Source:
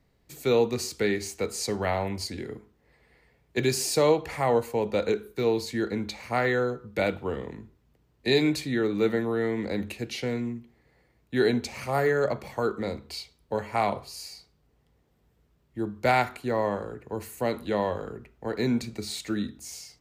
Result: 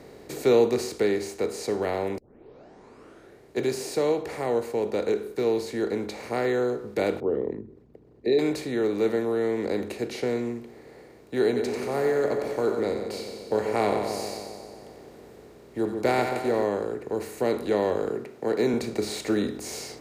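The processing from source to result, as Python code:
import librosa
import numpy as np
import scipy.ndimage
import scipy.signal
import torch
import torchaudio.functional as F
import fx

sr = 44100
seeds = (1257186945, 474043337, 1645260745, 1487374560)

y = fx.envelope_sharpen(x, sr, power=2.0, at=(7.2, 8.39))
y = fx.echo_split(y, sr, split_hz=840.0, low_ms=135, high_ms=91, feedback_pct=52, wet_db=-9, at=(11.55, 16.63), fade=0.02)
y = fx.highpass(y, sr, hz=120.0, slope=24, at=(18.1, 18.74))
y = fx.edit(y, sr, fx.tape_start(start_s=2.18, length_s=1.39), tone=tone)
y = fx.bin_compress(y, sr, power=0.6)
y = fx.rider(y, sr, range_db=10, speed_s=2.0)
y = fx.peak_eq(y, sr, hz=400.0, db=8.0, octaves=1.1)
y = F.gain(torch.from_numpy(y), -9.0).numpy()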